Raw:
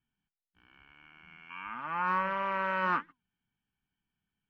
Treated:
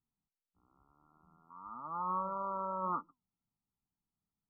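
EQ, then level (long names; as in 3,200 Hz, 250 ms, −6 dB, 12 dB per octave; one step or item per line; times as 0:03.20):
linear-phase brick-wall low-pass 1,400 Hz
−5.0 dB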